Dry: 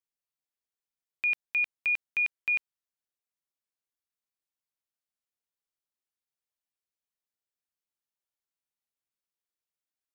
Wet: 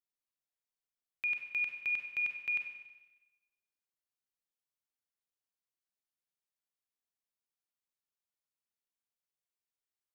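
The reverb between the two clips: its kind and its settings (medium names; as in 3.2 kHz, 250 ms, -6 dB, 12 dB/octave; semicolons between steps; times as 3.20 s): Schroeder reverb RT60 1.1 s, combs from 31 ms, DRR 4 dB; trim -6 dB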